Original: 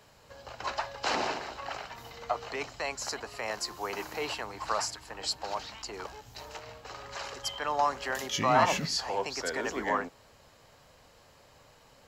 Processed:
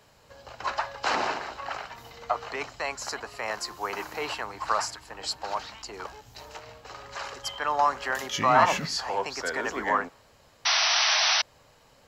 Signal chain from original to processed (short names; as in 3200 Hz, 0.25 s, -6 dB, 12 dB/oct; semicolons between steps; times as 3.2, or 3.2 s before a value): dynamic EQ 1300 Hz, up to +6 dB, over -44 dBFS, Q 0.86; painted sound noise, 10.65–11.42, 610–6100 Hz -23 dBFS